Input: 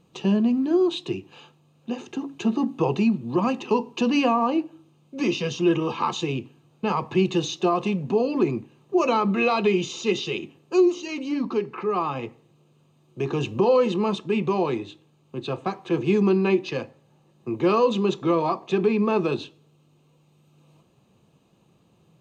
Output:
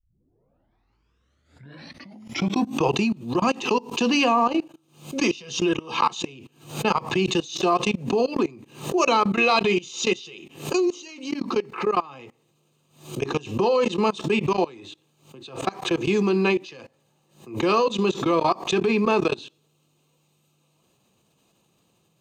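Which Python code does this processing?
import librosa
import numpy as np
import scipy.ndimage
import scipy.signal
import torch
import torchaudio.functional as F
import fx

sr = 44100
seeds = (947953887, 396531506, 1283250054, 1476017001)

y = fx.tape_start_head(x, sr, length_s=2.86)
y = fx.high_shelf(y, sr, hz=3900.0, db=11.0)
y = fx.level_steps(y, sr, step_db=23)
y = fx.low_shelf(y, sr, hz=310.0, db=-5.5)
y = fx.pre_swell(y, sr, db_per_s=130.0)
y = y * librosa.db_to_amplitude(5.5)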